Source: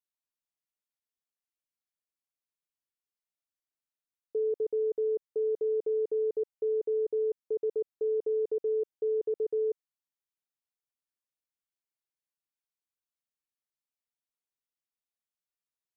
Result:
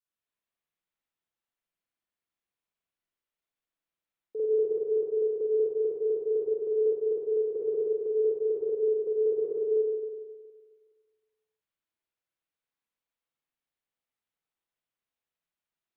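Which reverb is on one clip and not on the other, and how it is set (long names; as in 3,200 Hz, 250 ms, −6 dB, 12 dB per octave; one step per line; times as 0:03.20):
spring reverb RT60 1.6 s, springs 46/52 ms, chirp 45 ms, DRR −10 dB
level −5 dB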